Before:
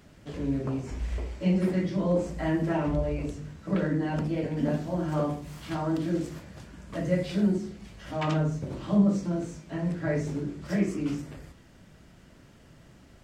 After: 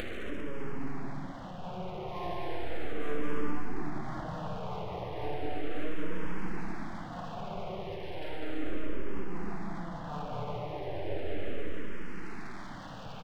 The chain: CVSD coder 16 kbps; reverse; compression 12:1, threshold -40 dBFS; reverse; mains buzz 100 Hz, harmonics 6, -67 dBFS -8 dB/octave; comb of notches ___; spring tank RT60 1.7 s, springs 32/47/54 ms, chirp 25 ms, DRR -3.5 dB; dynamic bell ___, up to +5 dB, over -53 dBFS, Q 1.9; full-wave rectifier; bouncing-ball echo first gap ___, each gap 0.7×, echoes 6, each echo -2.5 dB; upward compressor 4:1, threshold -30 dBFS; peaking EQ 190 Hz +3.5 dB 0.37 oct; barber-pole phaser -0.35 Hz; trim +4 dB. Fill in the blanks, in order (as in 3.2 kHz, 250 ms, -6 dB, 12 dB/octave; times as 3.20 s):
1.2 kHz, 130 Hz, 200 ms